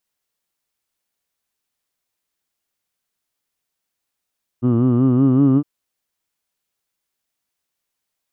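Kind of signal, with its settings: formant vowel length 1.01 s, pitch 118 Hz, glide +3 st, F1 290 Hz, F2 1.2 kHz, F3 2.9 kHz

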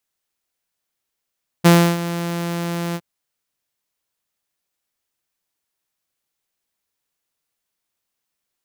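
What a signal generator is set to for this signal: ADSR saw 171 Hz, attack 20 ms, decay 307 ms, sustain -15 dB, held 1.31 s, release 53 ms -4.5 dBFS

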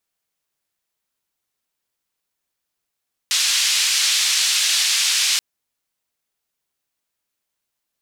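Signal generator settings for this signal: noise band 2.9–5.6 kHz, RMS -18.5 dBFS 2.08 s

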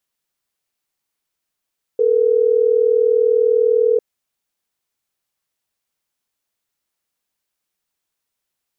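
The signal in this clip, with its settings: call progress tone ringback tone, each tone -14.5 dBFS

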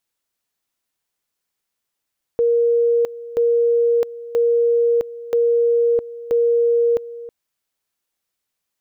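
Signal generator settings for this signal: two-level tone 470 Hz -13 dBFS, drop 17 dB, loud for 0.66 s, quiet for 0.32 s, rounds 5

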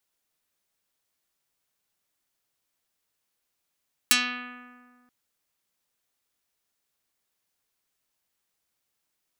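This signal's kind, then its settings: plucked string B3, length 0.98 s, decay 1.92 s, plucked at 0.48, dark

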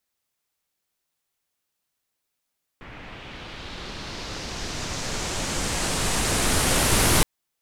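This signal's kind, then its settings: swept filtered noise pink, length 4.42 s lowpass, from 2.1 kHz, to 11 kHz, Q 1.7, linear, gain ramp +23 dB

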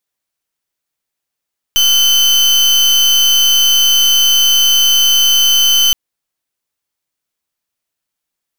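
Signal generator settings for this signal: pulse 3.05 kHz, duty 34% -10 dBFS 4.17 s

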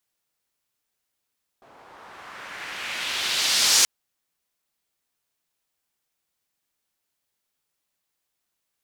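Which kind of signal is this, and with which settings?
swept filtered noise pink, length 2.23 s bandpass, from 700 Hz, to 6.1 kHz, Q 1.4, exponential, gain ramp +37 dB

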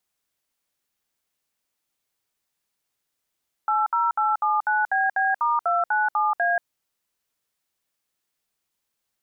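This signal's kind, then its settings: DTMF "80879BB*297A", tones 183 ms, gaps 64 ms, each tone -21.5 dBFS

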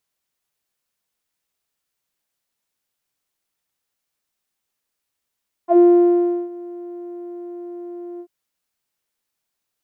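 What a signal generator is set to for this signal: synth note saw F4 12 dB/octave, low-pass 460 Hz, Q 8.4, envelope 1 oct, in 0.08 s, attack 87 ms, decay 0.72 s, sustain -23 dB, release 0.07 s, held 2.52 s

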